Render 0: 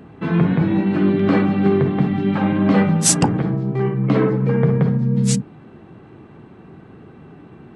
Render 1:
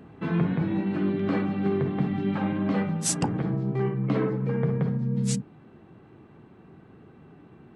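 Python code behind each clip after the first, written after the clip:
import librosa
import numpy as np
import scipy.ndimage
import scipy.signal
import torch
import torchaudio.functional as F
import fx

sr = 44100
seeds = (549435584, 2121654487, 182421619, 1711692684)

y = fx.rider(x, sr, range_db=10, speed_s=0.5)
y = y * 10.0 ** (-9.0 / 20.0)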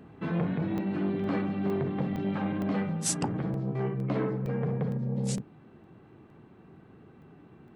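y = fx.buffer_crackle(x, sr, first_s=0.78, period_s=0.46, block=64, kind='zero')
y = fx.transformer_sat(y, sr, knee_hz=430.0)
y = y * 10.0 ** (-2.5 / 20.0)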